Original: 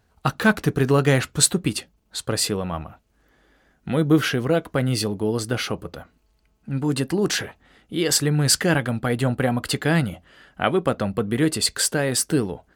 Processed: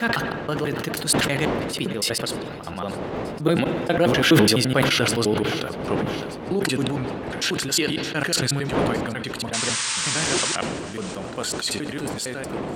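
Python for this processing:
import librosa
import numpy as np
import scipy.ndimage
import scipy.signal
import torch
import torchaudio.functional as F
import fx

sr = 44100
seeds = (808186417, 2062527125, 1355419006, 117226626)

p1 = fx.block_reorder(x, sr, ms=86.0, group=6)
p2 = fx.doppler_pass(p1, sr, speed_mps=22, closest_m=26.0, pass_at_s=4.79)
p3 = fx.dmg_wind(p2, sr, seeds[0], corner_hz=430.0, level_db=-37.0)
p4 = fx.highpass(p3, sr, hz=190.0, slope=6)
p5 = fx.peak_eq(p4, sr, hz=3000.0, db=5.0, octaves=1.5)
p6 = fx.rider(p5, sr, range_db=4, speed_s=2.0)
p7 = p5 + (p6 * librosa.db_to_amplitude(0.0))
p8 = fx.spec_paint(p7, sr, seeds[1], shape='noise', start_s=9.53, length_s=1.03, low_hz=840.0, high_hz=9300.0, level_db=-23.0)
p9 = p8 + fx.echo_feedback(p8, sr, ms=615, feedback_pct=57, wet_db=-23.5, dry=0)
p10 = fx.rev_spring(p9, sr, rt60_s=3.0, pass_ms=(58,), chirp_ms=70, drr_db=16.5)
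p11 = fx.sustainer(p10, sr, db_per_s=30.0)
y = p11 * librosa.db_to_amplitude(-2.5)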